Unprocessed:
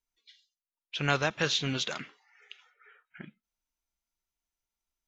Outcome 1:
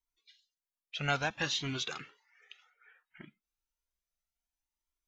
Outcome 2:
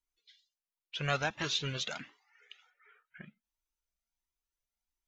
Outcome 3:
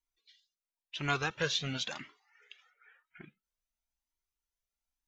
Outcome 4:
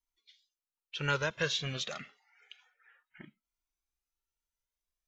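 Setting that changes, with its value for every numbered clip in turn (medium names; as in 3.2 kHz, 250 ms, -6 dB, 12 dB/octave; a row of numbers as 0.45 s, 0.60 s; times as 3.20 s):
Shepard-style flanger, rate: 0.62 Hz, 1.4 Hz, 0.97 Hz, 0.3 Hz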